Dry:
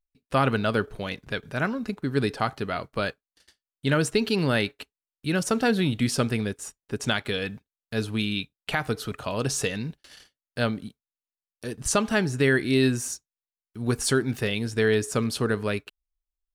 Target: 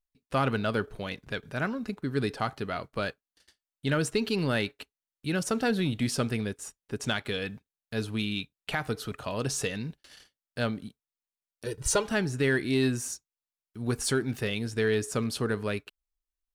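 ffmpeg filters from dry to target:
-filter_complex "[0:a]asplit=2[s0][s1];[s1]asoftclip=type=tanh:threshold=0.112,volume=0.531[s2];[s0][s2]amix=inputs=2:normalize=0,asettb=1/sr,asplit=3[s3][s4][s5];[s3]atrim=end=11.664[s6];[s4]atrim=start=11.66:end=12.07,asetpts=PTS-STARTPTS,afade=t=in:d=0.004:c=qsin,afade=t=out:st=0.406:d=0.004:c=qsin,aecho=1:1:2.1:0.97,atrim=end_sample=18081[s7];[s5]atrim=start=12.066[s8];[s6][s7]acrossfade=d=0.004:c1=hsin:c2=qsin[s9];[s9][s8]acrossfade=d=0.004:c1=qsin:c2=hsin,volume=0.447"

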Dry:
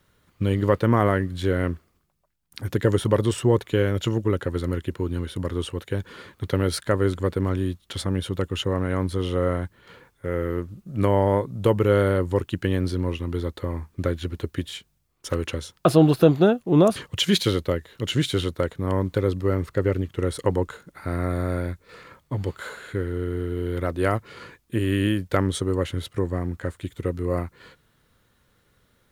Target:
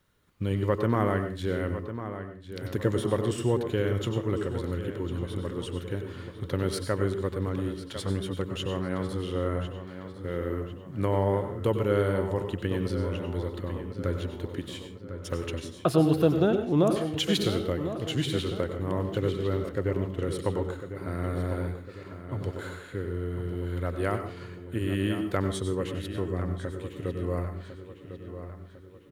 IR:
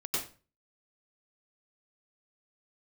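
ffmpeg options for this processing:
-filter_complex "[0:a]asplit=2[s0][s1];[s1]adelay=1051,lowpass=f=4000:p=1,volume=0.299,asplit=2[s2][s3];[s3]adelay=1051,lowpass=f=4000:p=1,volume=0.5,asplit=2[s4][s5];[s5]adelay=1051,lowpass=f=4000:p=1,volume=0.5,asplit=2[s6][s7];[s7]adelay=1051,lowpass=f=4000:p=1,volume=0.5,asplit=2[s8][s9];[s9]adelay=1051,lowpass=f=4000:p=1,volume=0.5[s10];[s0][s2][s4][s6][s8][s10]amix=inputs=6:normalize=0,asplit=2[s11][s12];[1:a]atrim=start_sample=2205[s13];[s12][s13]afir=irnorm=-1:irlink=0,volume=0.299[s14];[s11][s14]amix=inputs=2:normalize=0,volume=0.398"

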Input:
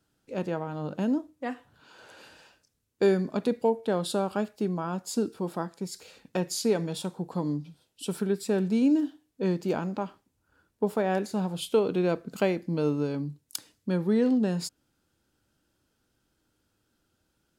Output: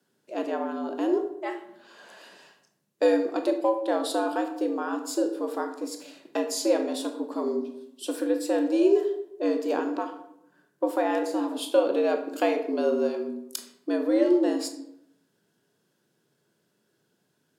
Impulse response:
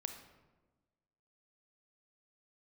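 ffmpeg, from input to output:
-filter_complex "[0:a]afreqshift=100[s0];[1:a]atrim=start_sample=2205,asetrate=74970,aresample=44100[s1];[s0][s1]afir=irnorm=-1:irlink=0,volume=2.51"

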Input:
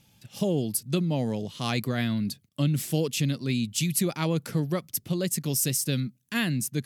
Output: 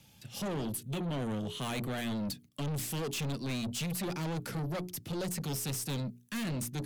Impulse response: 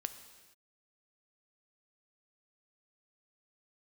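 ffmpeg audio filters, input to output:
-filter_complex "[0:a]bandreject=f=60:t=h:w=6,bandreject=f=120:t=h:w=6,bandreject=f=180:t=h:w=6,bandreject=f=240:t=h:w=6,bandreject=f=300:t=h:w=6,bandreject=f=360:t=h:w=6,bandreject=f=420:t=h:w=6,acrossover=split=140|630|3600[s0][s1][s2][s3];[s2]aeval=exprs='0.0299*(abs(mod(val(0)/0.0299+3,4)-2)-1)':c=same[s4];[s3]alimiter=level_in=1.26:limit=0.0631:level=0:latency=1:release=88,volume=0.794[s5];[s0][s1][s4][s5]amix=inputs=4:normalize=0,aeval=exprs='(tanh(50.1*val(0)+0.15)-tanh(0.15))/50.1':c=same,asettb=1/sr,asplit=3[s6][s7][s8];[s6]atrim=end=0.654[s9];[s7]atrim=start=0.65:end=2.15,asetpts=PTS-STARTPTS,afade=t=in:d=0.004:c=qsin,afade=t=out:st=1.496:d=0.004:c=qsin,equalizer=f=3150:t=o:w=0.33:g=5,equalizer=f=5000:t=o:w=0.33:g=-10,equalizer=f=10000:t=o:w=0.33:g=3[s10];[s8]atrim=start=2.146[s11];[s9][s10]acrossfade=d=0.004:c1=hsin:c2=qsin[s12];[s12][s11]acrossfade=d=0.004:c1=qsin:c2=hsin,volume=1.19"

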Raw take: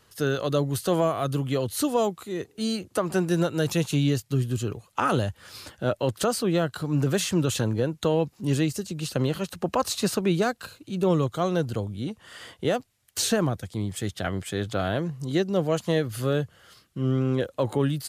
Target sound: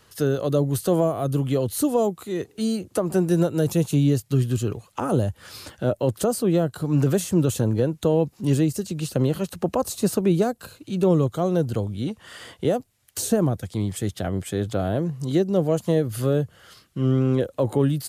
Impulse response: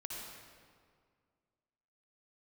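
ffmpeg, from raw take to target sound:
-filter_complex "[0:a]acrossover=split=800|7500[s0][s1][s2];[s1]acompressor=threshold=0.00708:ratio=6[s3];[s0][s3][s2]amix=inputs=3:normalize=0,volume=1.58"

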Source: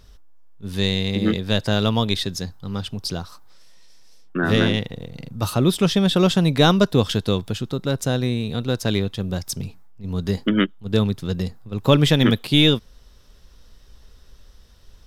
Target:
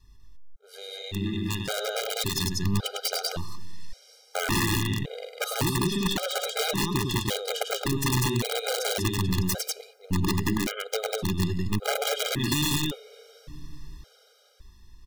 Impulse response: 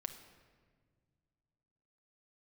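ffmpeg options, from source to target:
-filter_complex "[0:a]asplit=2[s0][s1];[1:a]atrim=start_sample=2205[s2];[s1][s2]afir=irnorm=-1:irlink=0,volume=0.251[s3];[s0][s3]amix=inputs=2:normalize=0,acompressor=threshold=0.0708:ratio=12,adynamicequalizer=threshold=0.01:dfrequency=210:dqfactor=1.7:tfrequency=210:tqfactor=1.7:attack=5:release=100:ratio=0.375:range=2.5:mode=cutabove:tftype=bell,dynaudnorm=f=310:g=9:m=3.76,aecho=1:1:102|195.3:0.562|0.794,aeval=exprs='(mod(2.66*val(0)+1,2)-1)/2.66':c=same,afftfilt=real='re*gt(sin(2*PI*0.89*pts/sr)*(1-2*mod(floor(b*sr/1024/410),2)),0)':imag='im*gt(sin(2*PI*0.89*pts/sr)*(1-2*mod(floor(b*sr/1024/410),2)),0)':win_size=1024:overlap=0.75,volume=0.422"

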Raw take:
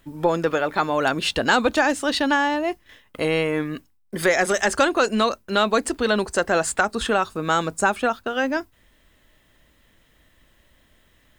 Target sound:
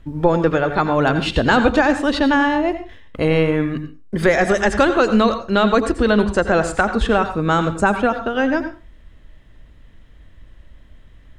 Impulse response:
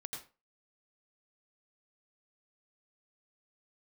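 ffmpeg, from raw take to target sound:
-filter_complex "[0:a]aemphasis=mode=reproduction:type=bsi,asplit=2[s0][s1];[1:a]atrim=start_sample=2205[s2];[s1][s2]afir=irnorm=-1:irlink=0,volume=0.944[s3];[s0][s3]amix=inputs=2:normalize=0,volume=0.891"

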